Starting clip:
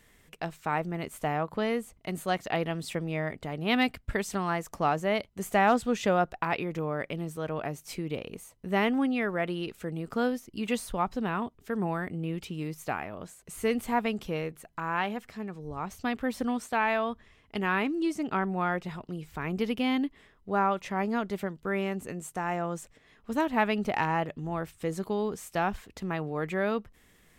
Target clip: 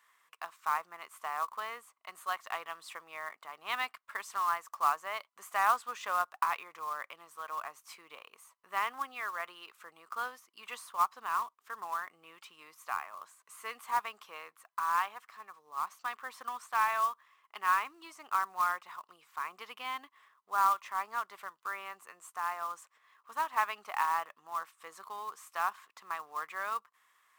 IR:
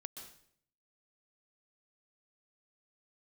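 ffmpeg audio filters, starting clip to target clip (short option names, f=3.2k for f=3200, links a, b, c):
-af "highpass=f=1.1k:t=q:w=6.4,acrusher=bits=4:mode=log:mix=0:aa=0.000001,volume=-9dB"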